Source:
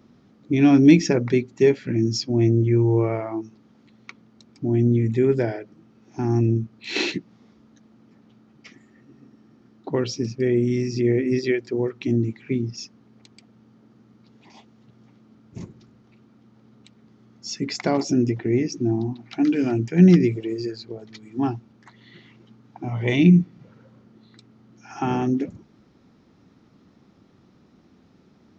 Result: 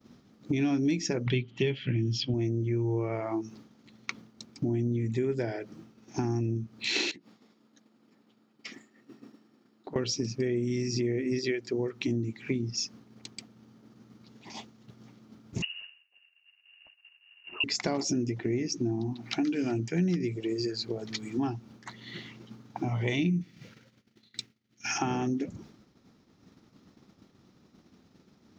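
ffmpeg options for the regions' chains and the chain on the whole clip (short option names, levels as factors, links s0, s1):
-filter_complex "[0:a]asettb=1/sr,asplit=3[s0][s1][s2];[s0]atrim=end=1.264[s3];[s1]atrim=start=1.26:end=2.34,asetpts=PTS-STARTPTS,afade=t=in:d=0.004:c=qsin,afade=t=out:st=1.076:d=0.004:c=qsin,lowpass=f=3100:t=q:w=10,equalizer=f=130:w=2.8:g=12[s4];[s2]atrim=start=2.336[s5];[s3][s4]acrossfade=d=0.004:c1=hsin:c2=qsin[s6];[s6][s5]acrossfade=d=0.004:c1=qsin:c2=hsin,asettb=1/sr,asplit=3[s7][s8][s9];[s7]atrim=end=7.114[s10];[s8]atrim=start=7.11:end=9.96,asetpts=PTS-STARTPTS,afade=t=in:d=0.004:c=qsin,afade=t=out:st=2.846:d=0.004:c=qsin,highpass=230,bandreject=f=6000:w=8.2,acompressor=threshold=0.00708:ratio=8:attack=3.2:release=140:knee=1:detection=peak[s11];[s9]atrim=start=9.956[s12];[s10][s11]acrossfade=d=0.004:c1=hsin:c2=qsin[s13];[s13][s12]acrossfade=d=0.004:c1=qsin:c2=hsin,asettb=1/sr,asplit=3[s14][s15][s16];[s14]atrim=end=15.624[s17];[s15]atrim=start=15.62:end=17.64,asetpts=PTS-STARTPTS,afade=t=in:d=0.004:c=qsin,afade=t=out:st=2.016:d=0.004:c=qsin,agate=range=0.0224:threshold=0.00282:ratio=3:release=100:detection=peak,lowpass=f=2600:t=q:w=0.5098,lowpass=f=2600:t=q:w=0.6013,lowpass=f=2600:t=q:w=0.9,lowpass=f=2600:t=q:w=2.563,afreqshift=-3000[s18];[s16]atrim=start=17.636[s19];[s17][s18]acrossfade=d=0.004:c1=hsin:c2=qsin[s20];[s20][s19]acrossfade=d=0.004:c1=qsin:c2=hsin,asettb=1/sr,asplit=3[s21][s22][s23];[s21]atrim=end=23.414[s24];[s22]atrim=start=23.41:end=24.98,asetpts=PTS-STARTPTS,afade=t=in:d=0.004:c=qsin,afade=t=out:st=1.566:d=0.004:c=qsin,agate=range=0.0224:threshold=0.00447:ratio=3:release=100:detection=peak,highshelf=f=1500:t=q:w=1.5:g=9[s25];[s23]atrim=start=24.976[s26];[s24][s25]acrossfade=d=0.004:c1=hsin:c2=qsin[s27];[s27][s26]acrossfade=d=0.004:c1=qsin:c2=hsin,agate=range=0.0224:threshold=0.00447:ratio=3:detection=peak,highshelf=f=4100:g=10,acompressor=threshold=0.0178:ratio=4,volume=1.88"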